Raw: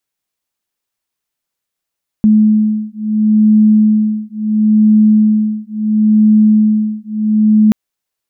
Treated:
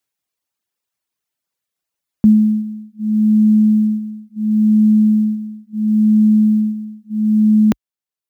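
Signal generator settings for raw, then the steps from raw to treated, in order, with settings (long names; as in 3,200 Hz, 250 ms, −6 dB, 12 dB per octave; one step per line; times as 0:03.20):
two tones that beat 214 Hz, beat 0.73 Hz, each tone −10.5 dBFS 5.48 s
reverb reduction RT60 0.93 s
high-pass filter 51 Hz 24 dB per octave
floating-point word with a short mantissa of 6 bits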